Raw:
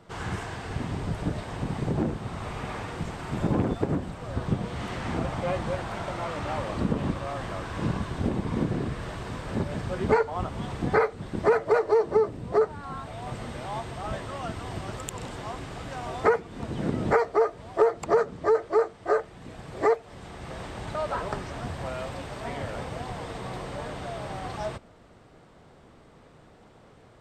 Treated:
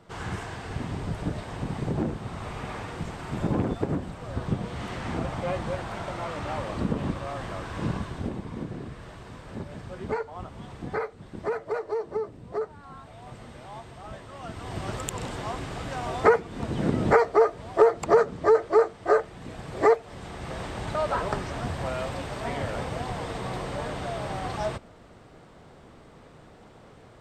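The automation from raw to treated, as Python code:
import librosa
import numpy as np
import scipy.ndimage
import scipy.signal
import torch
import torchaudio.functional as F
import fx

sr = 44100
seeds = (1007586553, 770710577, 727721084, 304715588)

y = fx.gain(x, sr, db=fx.line((7.96, -1.0), (8.53, -8.0), (14.29, -8.0), (14.88, 3.0)))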